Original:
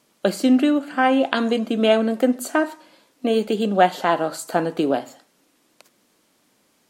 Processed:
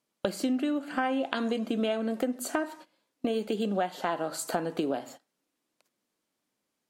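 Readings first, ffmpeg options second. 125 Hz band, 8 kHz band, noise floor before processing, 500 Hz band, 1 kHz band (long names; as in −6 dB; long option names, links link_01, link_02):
−9.0 dB, −4.5 dB, −64 dBFS, −10.5 dB, −11.5 dB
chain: -af "agate=range=-19dB:threshold=-40dB:ratio=16:detection=peak,acompressor=threshold=-27dB:ratio=5"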